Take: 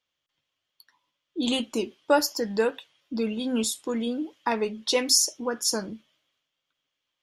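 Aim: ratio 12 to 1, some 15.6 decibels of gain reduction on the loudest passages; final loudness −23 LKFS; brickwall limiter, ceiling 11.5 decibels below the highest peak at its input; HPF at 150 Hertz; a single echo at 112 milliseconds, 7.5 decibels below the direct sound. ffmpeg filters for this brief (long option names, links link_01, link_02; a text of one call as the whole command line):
ffmpeg -i in.wav -af "highpass=150,acompressor=threshold=-31dB:ratio=12,alimiter=level_in=3dB:limit=-24dB:level=0:latency=1,volume=-3dB,aecho=1:1:112:0.422,volume=14dB" out.wav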